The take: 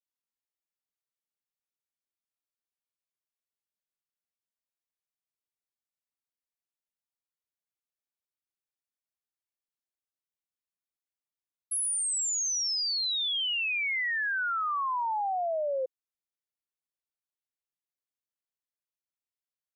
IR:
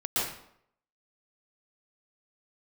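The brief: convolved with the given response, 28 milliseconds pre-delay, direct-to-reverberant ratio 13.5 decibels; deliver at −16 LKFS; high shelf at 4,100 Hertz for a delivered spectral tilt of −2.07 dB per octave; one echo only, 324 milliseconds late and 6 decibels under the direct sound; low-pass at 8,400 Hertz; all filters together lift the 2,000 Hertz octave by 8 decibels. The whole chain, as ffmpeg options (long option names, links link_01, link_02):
-filter_complex "[0:a]lowpass=8400,equalizer=frequency=2000:width_type=o:gain=9,highshelf=frequency=4100:gain=4,aecho=1:1:324:0.501,asplit=2[link_01][link_02];[1:a]atrim=start_sample=2205,adelay=28[link_03];[link_02][link_03]afir=irnorm=-1:irlink=0,volume=-22.5dB[link_04];[link_01][link_04]amix=inputs=2:normalize=0,volume=6dB"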